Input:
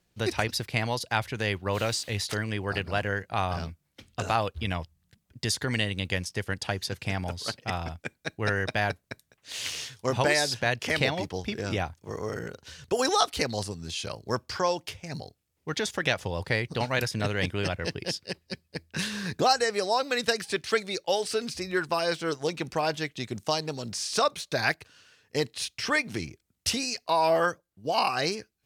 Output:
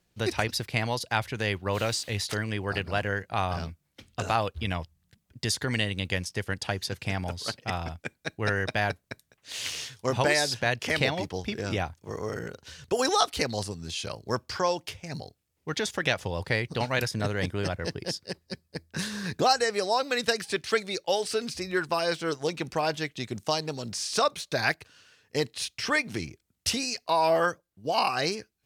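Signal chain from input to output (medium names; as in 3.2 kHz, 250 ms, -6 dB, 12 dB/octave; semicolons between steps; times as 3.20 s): 17.11–19.24 s: peaking EQ 2.7 kHz -7 dB 0.77 oct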